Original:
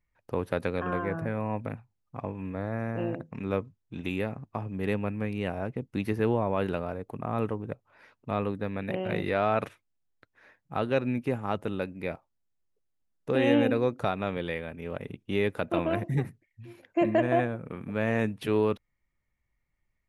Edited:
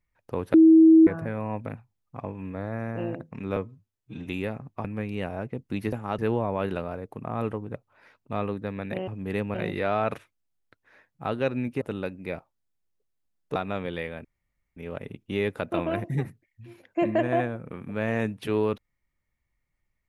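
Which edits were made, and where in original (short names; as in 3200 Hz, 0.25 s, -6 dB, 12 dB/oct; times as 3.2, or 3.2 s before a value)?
0.54–1.07 bleep 322 Hz -10.5 dBFS
3.56–4.03 stretch 1.5×
4.61–5.08 move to 9.05
11.32–11.58 move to 6.16
13.32–14.07 cut
14.76 insert room tone 0.52 s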